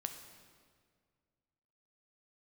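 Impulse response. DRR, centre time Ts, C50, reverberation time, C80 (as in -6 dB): 6.0 dB, 27 ms, 7.5 dB, 1.9 s, 9.0 dB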